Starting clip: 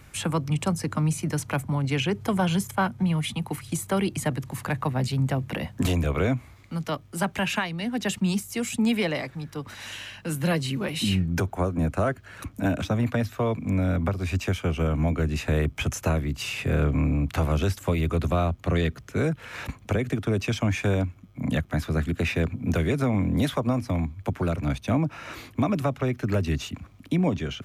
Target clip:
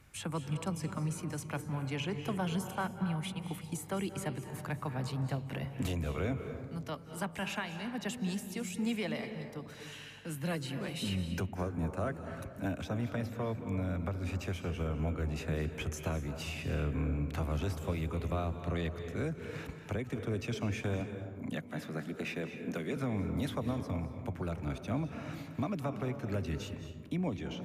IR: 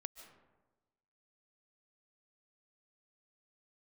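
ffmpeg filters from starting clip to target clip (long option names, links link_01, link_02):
-filter_complex "[0:a]asettb=1/sr,asplit=3[link_01][link_02][link_03];[link_01]atrim=end=21.004[link_04];[link_02]atrim=start=21:end=22.97,asetpts=PTS-STARTPTS,afade=type=in:duration=0.004:curve=qsin,afade=type=out:start_time=1.966:duration=0.004:curve=qsin,highpass=frequency=160:width=0.5412,highpass=frequency=160:width=1.3066[link_05];[link_03]atrim=start=22.966[link_06];[link_04][link_05]acrossfade=duration=0.004:curve1=hsin:curve2=qsin[link_07];[link_07][link_06]acrossfade=duration=0.004:curve1=qsin:curve2=hsin[link_08];[1:a]atrim=start_sample=2205,asetrate=30429,aresample=44100[link_09];[link_08][link_09]afir=irnorm=-1:irlink=0,volume=-8dB"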